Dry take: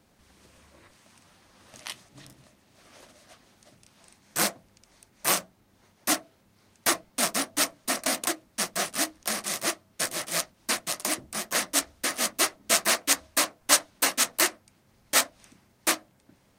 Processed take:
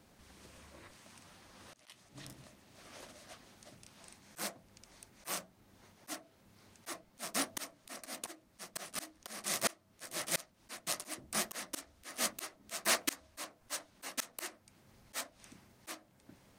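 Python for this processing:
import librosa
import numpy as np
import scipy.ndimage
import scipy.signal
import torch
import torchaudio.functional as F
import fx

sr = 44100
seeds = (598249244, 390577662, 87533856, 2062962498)

y = 10.0 ** (-9.5 / 20.0) * np.tanh(x / 10.0 ** (-9.5 / 20.0))
y = fx.auto_swell(y, sr, attack_ms=426.0)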